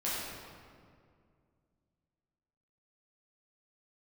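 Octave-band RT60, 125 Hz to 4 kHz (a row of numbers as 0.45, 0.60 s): 3.0, 2.8, 2.3, 2.0, 1.7, 1.3 s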